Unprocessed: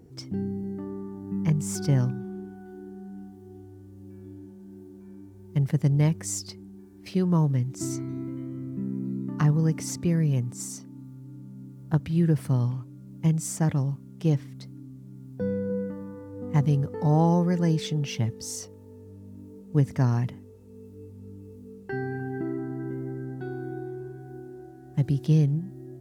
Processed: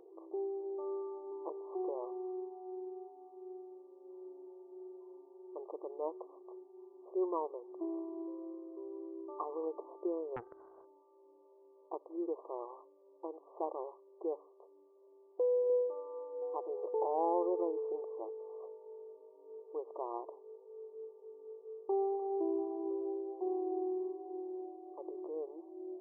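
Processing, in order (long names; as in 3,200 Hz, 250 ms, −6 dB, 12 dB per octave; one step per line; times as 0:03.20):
brickwall limiter −20.5 dBFS, peak gain reduction 10.5 dB
linear-phase brick-wall band-pass 330–1,200 Hz
0:10.36–0:10.85: highs frequency-modulated by the lows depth 0.65 ms
level +1.5 dB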